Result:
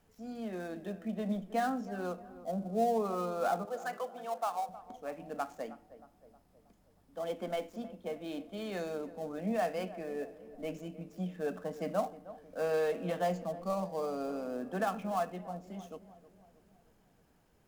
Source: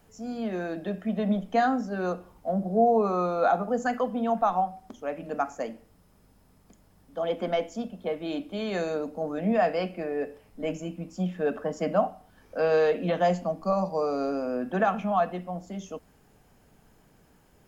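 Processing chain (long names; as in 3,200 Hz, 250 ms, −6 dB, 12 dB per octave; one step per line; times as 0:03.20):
gap after every zero crossing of 0.061 ms
0:03.65–0:04.69: Bessel high-pass filter 550 Hz, order 4
on a send: tape delay 315 ms, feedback 61%, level −14 dB, low-pass 1,100 Hz
on the sum: level −8.5 dB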